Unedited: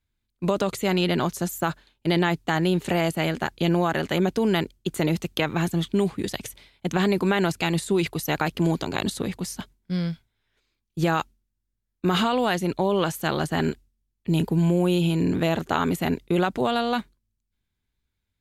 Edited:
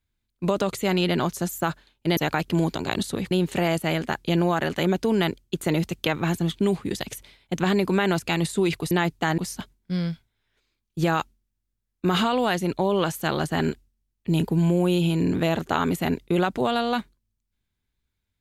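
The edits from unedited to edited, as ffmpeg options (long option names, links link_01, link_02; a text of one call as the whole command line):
ffmpeg -i in.wav -filter_complex "[0:a]asplit=5[link_01][link_02][link_03][link_04][link_05];[link_01]atrim=end=2.172[link_06];[link_02]atrim=start=8.238:end=9.382[link_07];[link_03]atrim=start=2.638:end=8.242[link_08];[link_04]atrim=start=2.168:end=2.642[link_09];[link_05]atrim=start=9.378[link_10];[link_06][link_07]acrossfade=duration=0.004:curve1=hsin:curve2=hsin[link_11];[link_11][link_08]acrossfade=duration=0.004:curve1=hsin:curve2=hsin[link_12];[link_12][link_09]acrossfade=duration=0.004:curve1=hsin:curve2=hsin[link_13];[link_13][link_10]acrossfade=duration=0.004:curve1=hsin:curve2=hsin" out.wav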